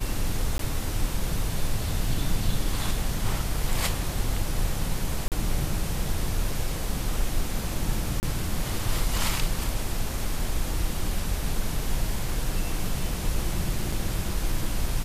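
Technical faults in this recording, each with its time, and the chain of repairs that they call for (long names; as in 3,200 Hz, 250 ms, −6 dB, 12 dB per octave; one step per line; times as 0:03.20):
0:00.58–0:00.59: drop-out 13 ms
0:05.28–0:05.32: drop-out 38 ms
0:08.20–0:08.23: drop-out 29 ms
0:13.92: drop-out 4.2 ms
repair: repair the gap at 0:00.58, 13 ms
repair the gap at 0:05.28, 38 ms
repair the gap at 0:08.20, 29 ms
repair the gap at 0:13.92, 4.2 ms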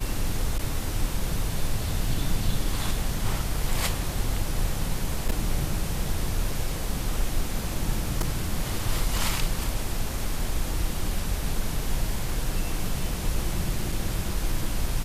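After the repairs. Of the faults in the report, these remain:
none of them is left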